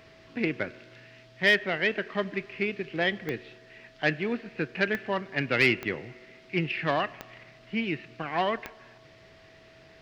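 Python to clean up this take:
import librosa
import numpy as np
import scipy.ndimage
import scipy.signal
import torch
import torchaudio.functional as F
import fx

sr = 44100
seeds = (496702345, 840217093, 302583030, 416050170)

y = fx.fix_declick_ar(x, sr, threshold=10.0)
y = fx.notch(y, sr, hz=650.0, q=30.0)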